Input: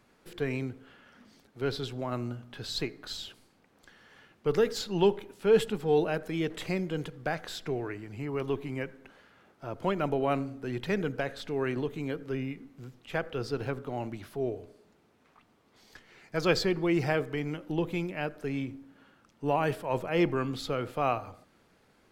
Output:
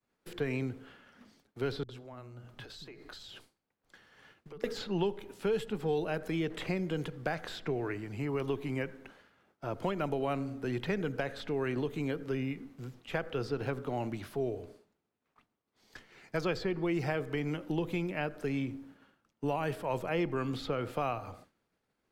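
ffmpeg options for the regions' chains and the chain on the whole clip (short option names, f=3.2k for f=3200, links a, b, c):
-filter_complex "[0:a]asettb=1/sr,asplit=3[a][b][c];[a]atrim=end=1.834[d];[b]atrim=start=1.83:end=4.64,asetpts=PTS-STARTPTS,afade=t=in:d=0.004:c=qsin,afade=t=out:st=2.806:d=0.004:c=qsin,acompressor=threshold=-44dB:ratio=12:attack=3.2:release=140:knee=1:detection=peak,acrossover=split=240[e][f];[f]adelay=60[g];[e][g]amix=inputs=2:normalize=0,atrim=end_sample=123921[h];[c]atrim=start=4.636[i];[d][h]acrossfade=d=0.004:c1=hsin:c2=qsin[j];[j][i]acrossfade=d=0.004:c1=qsin:c2=hsin,agate=range=-33dB:threshold=-52dB:ratio=3:detection=peak,acrossover=split=110|3300[k][l][m];[k]acompressor=threshold=-48dB:ratio=4[n];[l]acompressor=threshold=-32dB:ratio=4[o];[m]acompressor=threshold=-55dB:ratio=4[p];[n][o][p]amix=inputs=3:normalize=0,volume=2dB"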